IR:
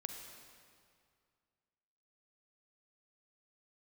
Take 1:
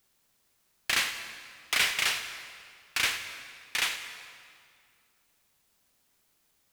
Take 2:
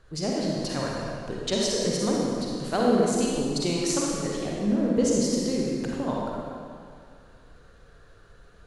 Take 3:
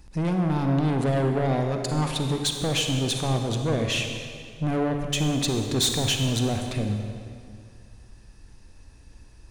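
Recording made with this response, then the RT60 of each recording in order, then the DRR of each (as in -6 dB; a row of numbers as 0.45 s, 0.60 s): 3; 2.2 s, 2.2 s, 2.2 s; 8.0 dB, -3.5 dB, 4.0 dB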